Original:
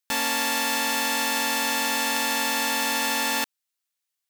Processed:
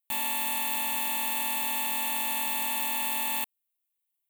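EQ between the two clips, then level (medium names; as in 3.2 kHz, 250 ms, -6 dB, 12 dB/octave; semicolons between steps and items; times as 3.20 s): treble shelf 8.4 kHz +11.5 dB; static phaser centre 1.5 kHz, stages 6; -6.5 dB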